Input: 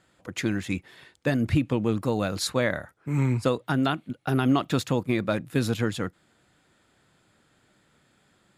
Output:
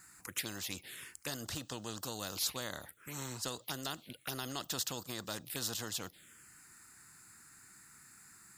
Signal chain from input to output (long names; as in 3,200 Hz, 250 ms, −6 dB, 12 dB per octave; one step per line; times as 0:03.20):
phaser swept by the level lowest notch 560 Hz, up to 2,300 Hz, full sweep at −23 dBFS
first-order pre-emphasis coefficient 0.9
every bin compressed towards the loudest bin 2 to 1
level +1.5 dB